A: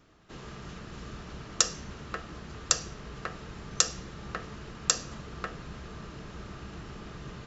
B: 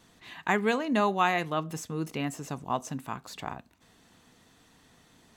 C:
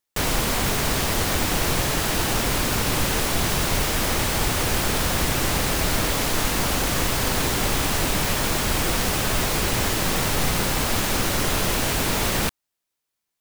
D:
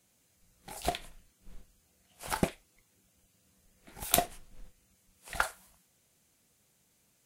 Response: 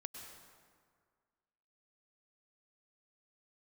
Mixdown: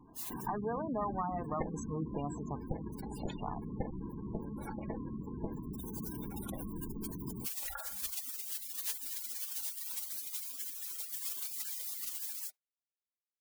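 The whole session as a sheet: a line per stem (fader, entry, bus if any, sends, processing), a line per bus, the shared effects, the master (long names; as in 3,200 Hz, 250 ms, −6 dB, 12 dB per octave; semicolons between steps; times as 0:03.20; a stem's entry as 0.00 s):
−4.5 dB, 0.00 s, no send, Butterworth low-pass 2,400 Hz 72 dB per octave; parametric band 260 Hz +13.5 dB 1.1 octaves; sample-rate reduction 1,300 Hz, jitter 0%
+0.5 dB, 0.00 s, muted 0:02.57–0:03.28, no send, octave-band graphic EQ 250/1,000/2,000/4,000 Hz −7/+7/−10/−7 dB; downward compressor 5 to 1, threshold −30 dBFS, peak gain reduction 12 dB; tube saturation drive 28 dB, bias 0.5
−2.0 dB, 0.00 s, no send, Chebyshev high-pass filter 290 Hz, order 10; gate on every frequency bin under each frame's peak −20 dB weak; automatic ducking −6 dB, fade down 1.05 s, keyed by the second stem
−20.0 dB, 2.35 s, no send, noise gate −59 dBFS, range −31 dB; comb filter 3.6 ms, depth 79%; envelope flattener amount 70%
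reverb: not used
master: gate on every frequency bin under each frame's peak −15 dB strong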